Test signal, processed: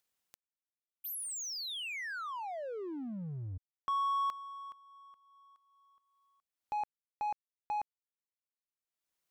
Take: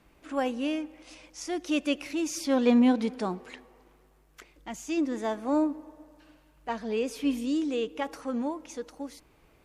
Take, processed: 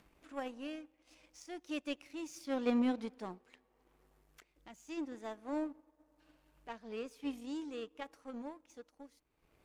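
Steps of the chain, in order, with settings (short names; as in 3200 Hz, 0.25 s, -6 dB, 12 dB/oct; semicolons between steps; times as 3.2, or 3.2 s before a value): power-law curve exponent 1.4; upward compressor, threshold -43 dBFS; gain -8 dB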